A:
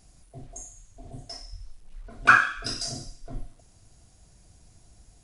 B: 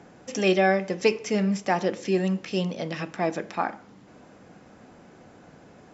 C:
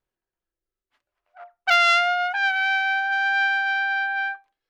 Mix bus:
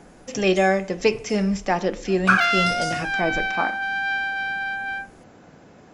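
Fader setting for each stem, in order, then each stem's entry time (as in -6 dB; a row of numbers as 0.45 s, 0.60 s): -1.5 dB, +2.0 dB, -3.5 dB; 0.00 s, 0.00 s, 0.70 s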